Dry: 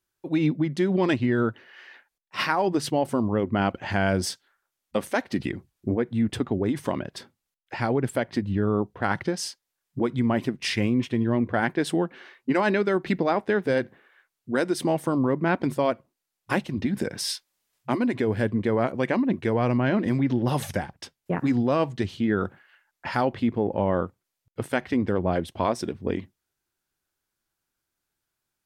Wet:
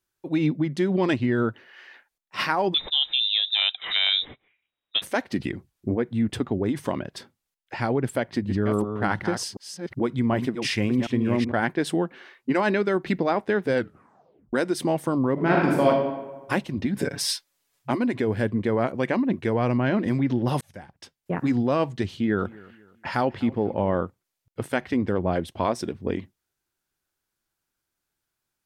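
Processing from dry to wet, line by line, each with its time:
0:02.74–0:05.02: voice inversion scrambler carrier 3,800 Hz
0:08.07–0:11.52: delay that plays each chunk backwards 375 ms, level −7 dB
0:13.75: tape stop 0.78 s
0:15.33–0:15.88: thrown reverb, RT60 1.2 s, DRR −3 dB
0:16.98–0:17.91: comb filter 7.1 ms, depth 100%
0:20.61–0:21.41: fade in
0:22.14–0:23.99: repeating echo 246 ms, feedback 37%, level −22 dB

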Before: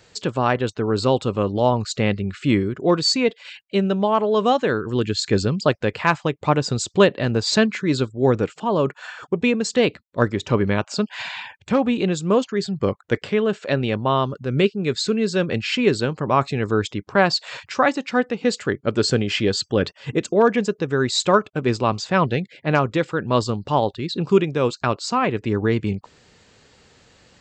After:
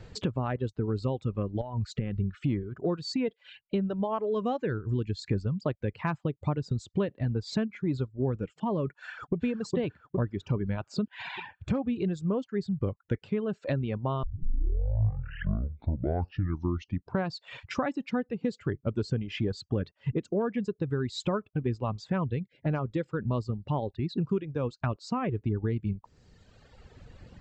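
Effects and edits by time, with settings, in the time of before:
0:01.61–0:02.16: downward compressor 12 to 1, threshold −22 dBFS
0:08.99–0:09.43: delay throw 410 ms, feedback 50%, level −1.5 dB
0:14.23: tape start 3.07 s
whole clip: reverb reduction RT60 1.5 s; RIAA equalisation playback; downward compressor 4 to 1, threshold −29 dBFS

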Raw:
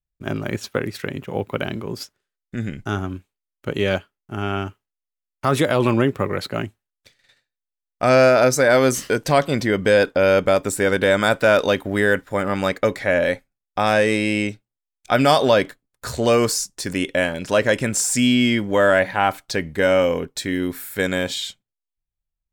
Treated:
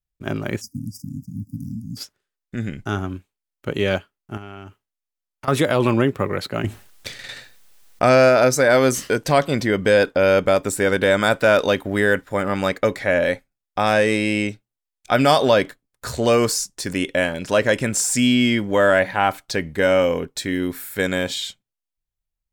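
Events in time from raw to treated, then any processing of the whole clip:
0:00.61–0:01.97: time-frequency box erased 300–4,700 Hz
0:04.37–0:05.48: downward compressor 5 to 1, threshold −33 dBFS
0:06.64–0:08.29: envelope flattener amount 50%

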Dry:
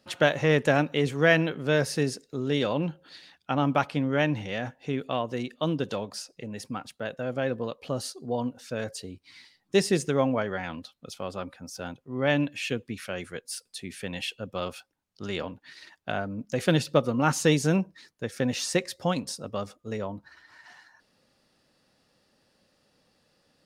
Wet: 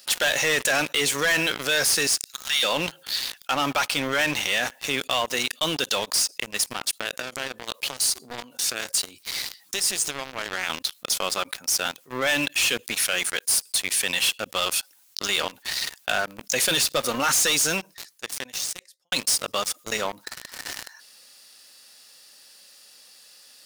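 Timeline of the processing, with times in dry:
0:02.07–0:02.63: high-pass filter 1,200 Hz 24 dB per octave
0:06.73–0:10.70: downward compressor, threshold −36 dBFS
0:17.39–0:19.12: fade out quadratic
whole clip: first difference; leveller curve on the samples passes 5; envelope flattener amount 50%; level +2.5 dB

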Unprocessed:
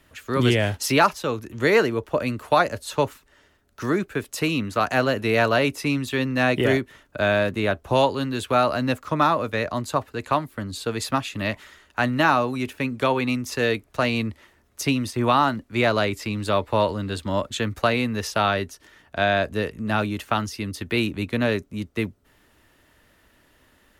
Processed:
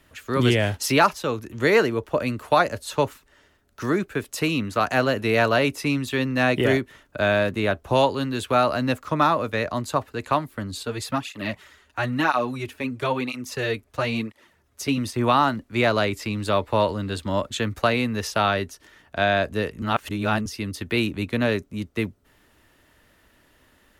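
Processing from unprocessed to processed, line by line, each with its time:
0:10.83–0:14.98: through-zero flanger with one copy inverted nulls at 1 Hz, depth 6.7 ms
0:19.82–0:20.46: reverse

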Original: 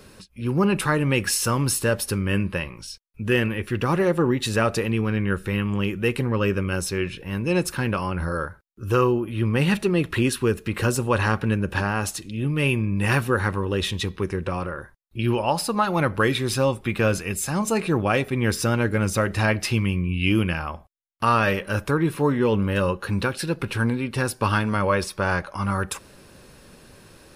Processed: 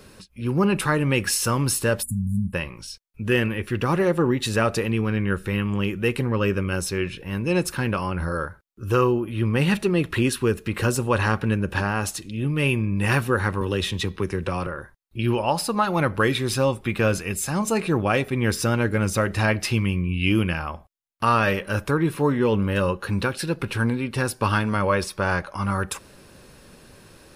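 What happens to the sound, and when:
0:02.03–0:02.54: time-frequency box erased 260–6,800 Hz
0:13.61–0:14.67: multiband upward and downward compressor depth 40%

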